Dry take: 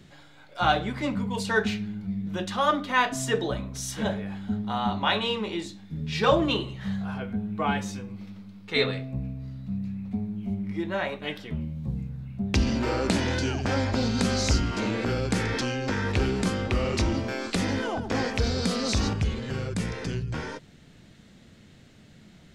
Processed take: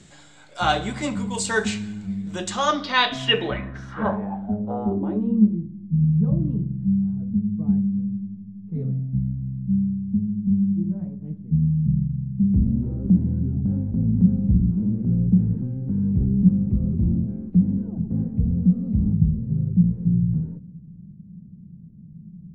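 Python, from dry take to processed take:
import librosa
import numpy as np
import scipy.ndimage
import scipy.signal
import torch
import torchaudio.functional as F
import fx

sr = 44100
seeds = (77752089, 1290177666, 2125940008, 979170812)

y = fx.rev_fdn(x, sr, rt60_s=1.1, lf_ratio=1.5, hf_ratio=0.95, size_ms=28.0, drr_db=16.0)
y = fx.filter_sweep_lowpass(y, sr, from_hz=7800.0, to_hz=170.0, start_s=2.49, end_s=5.62, q=6.2)
y = y * librosa.db_to_amplitude(1.5)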